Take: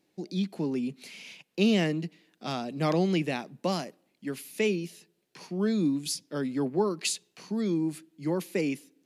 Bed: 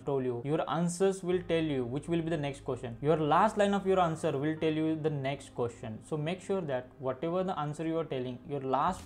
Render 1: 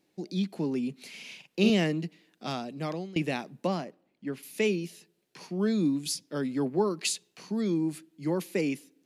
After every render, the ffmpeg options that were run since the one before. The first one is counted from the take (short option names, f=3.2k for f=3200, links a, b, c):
-filter_complex "[0:a]asettb=1/sr,asplit=3[a][b][c];[a]atrim=end=1.094[d];[b]atrim=start=1.09:end=1.7,asetpts=PTS-STARTPTS,afade=t=in:d=0.004:c=qsin,afade=t=out:st=0.606:d=0.004:c=qsin,asplit=2[e][f];[f]adelay=47,volume=-5.5dB[g];[e][g]amix=inputs=2:normalize=0,atrim=end_sample=26901[h];[c]atrim=start=1.696[i];[d][h]acrossfade=d=0.004:c1=hsin:c2=qsin[j];[j][i]acrossfade=d=0.004:c1=qsin:c2=hsin,asettb=1/sr,asplit=3[k][l][m];[k]atrim=end=3.674[n];[l]atrim=start=3.67:end=4.43,asetpts=PTS-STARTPTS,afade=t=in:d=0.004:c=qsin,afade=t=out:st=0.756:d=0.004:c=qsin,lowpass=f=1.9k:p=1[o];[m]atrim=start=4.426[p];[n][o]acrossfade=d=0.004:c1=hsin:c2=qsin[q];[q][p]acrossfade=d=0.004:c1=qsin:c2=hsin,asplit=2[r][s];[r]atrim=end=3.16,asetpts=PTS-STARTPTS,afade=t=out:st=2.46:d=0.7:silence=0.0794328[t];[s]atrim=start=3.16,asetpts=PTS-STARTPTS,afade=t=in:d=0.004:c=hsin:silence=0.0794328[u];[t][u]concat=n=2:v=0:a=1"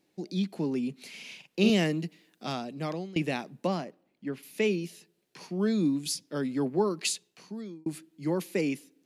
-filter_complex "[0:a]asettb=1/sr,asplit=3[a][b][c];[a]atrim=end=1.694[d];[b]atrim=start=1.69:end=2.46,asetpts=PTS-STARTPTS,afade=t=in:d=0.004:c=qsin,afade=t=out:st=0.766:d=0.004:c=qsin,highshelf=f=8.1k:g=7.5[e];[c]atrim=start=2.456[f];[d][e]acrossfade=d=0.004:c1=hsin:c2=qsin[g];[g][f]acrossfade=d=0.004:c1=qsin:c2=hsin,asettb=1/sr,asplit=3[h][i][j];[h]atrim=end=4.284[k];[i]atrim=start=4.28:end=4.71,asetpts=PTS-STARTPTS,afade=t=in:d=0.004:c=qsin,afade=t=out:st=0.426:d=0.004:c=qsin,equalizer=f=8.8k:t=o:w=1.7:g=-4.5[l];[j]atrim=start=4.706[m];[k][l]acrossfade=d=0.004:c1=hsin:c2=qsin[n];[n][m]acrossfade=d=0.004:c1=qsin:c2=hsin,asplit=2[o][p];[o]atrim=end=7.86,asetpts=PTS-STARTPTS,afade=t=out:st=7.08:d=0.78[q];[p]atrim=start=7.86,asetpts=PTS-STARTPTS,afade=t=in:d=0.004:c=hsin[r];[q][r]concat=n=2:v=0:a=1"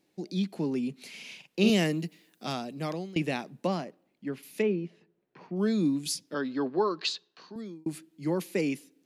-filter_complex "[0:a]asettb=1/sr,asplit=3[a][b][c];[a]atrim=end=1.674[d];[b]atrim=start=1.67:end=3.15,asetpts=PTS-STARTPTS,afade=t=in:d=0.004:c=qsin,afade=t=out:st=1.476:d=0.004:c=qsin,highshelf=f=10k:g=9.5[e];[c]atrim=start=3.146[f];[d][e]acrossfade=d=0.004:c1=hsin:c2=qsin[g];[g][f]acrossfade=d=0.004:c1=qsin:c2=hsin,asplit=3[h][i][j];[h]afade=t=out:st=4.61:d=0.02[k];[i]lowpass=1.6k,afade=t=in:st=4.61:d=0.02,afade=t=out:st=5.55:d=0.02[l];[j]afade=t=in:st=5.55:d=0.02[m];[k][l][m]amix=inputs=3:normalize=0,asettb=1/sr,asplit=3[n][o][p];[n]atrim=end=6.344[q];[o]atrim=start=6.34:end=7.56,asetpts=PTS-STARTPTS,afade=t=in:d=0.004:c=qsin,afade=t=out:st=1.216:d=0.004:c=qsin,highpass=140,equalizer=f=140:t=q:w=4:g=-6,equalizer=f=200:t=q:w=4:g=-8,equalizer=f=1.1k:t=q:w=4:g=7,equalizer=f=1.6k:t=q:w=4:g=7,equalizer=f=2.2k:t=q:w=4:g=-7,equalizer=f=4k:t=q:w=4:g=6,lowpass=f=5.1k:w=0.5412,lowpass=f=5.1k:w=1.3066[r];[p]atrim=start=7.556[s];[q][r]acrossfade=d=0.004:c1=hsin:c2=qsin[t];[t][s]acrossfade=d=0.004:c1=qsin:c2=hsin"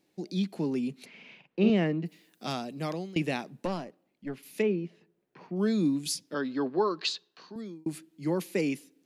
-filter_complex "[0:a]asplit=3[a][b][c];[a]afade=t=out:st=1.04:d=0.02[d];[b]lowpass=1.9k,afade=t=in:st=1.04:d=0.02,afade=t=out:st=2.05:d=0.02[e];[c]afade=t=in:st=2.05:d=0.02[f];[d][e][f]amix=inputs=3:normalize=0,asettb=1/sr,asplit=3[g][h][i];[g]atrim=end=3.654[j];[h]atrim=start=3.65:end=4.46,asetpts=PTS-STARTPTS,afade=t=in:d=0.004:c=qsin,afade=t=out:st=0.806:d=0.004:c=qsin,aeval=exprs='(tanh(15.8*val(0)+0.55)-tanh(0.55))/15.8':c=same[k];[i]atrim=start=4.456[l];[j][k]acrossfade=d=0.004:c1=hsin:c2=qsin[m];[m][l]acrossfade=d=0.004:c1=qsin:c2=hsin"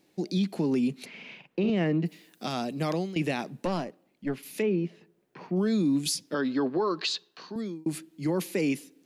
-af "acontrast=51,alimiter=limit=-19dB:level=0:latency=1:release=63"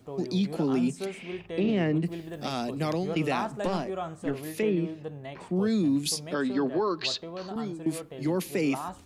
-filter_complex "[1:a]volume=-7dB[a];[0:a][a]amix=inputs=2:normalize=0"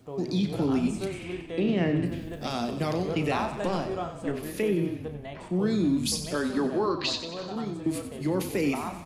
-filter_complex "[0:a]asplit=2[a][b];[b]adelay=34,volume=-11dB[c];[a][c]amix=inputs=2:normalize=0,asplit=9[d][e][f][g][h][i][j][k][l];[e]adelay=92,afreqshift=-31,volume=-10.5dB[m];[f]adelay=184,afreqshift=-62,volume=-14.7dB[n];[g]adelay=276,afreqshift=-93,volume=-18.8dB[o];[h]adelay=368,afreqshift=-124,volume=-23dB[p];[i]adelay=460,afreqshift=-155,volume=-27.1dB[q];[j]adelay=552,afreqshift=-186,volume=-31.3dB[r];[k]adelay=644,afreqshift=-217,volume=-35.4dB[s];[l]adelay=736,afreqshift=-248,volume=-39.6dB[t];[d][m][n][o][p][q][r][s][t]amix=inputs=9:normalize=0"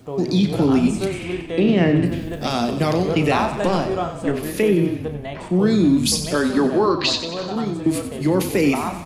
-af "volume=9dB"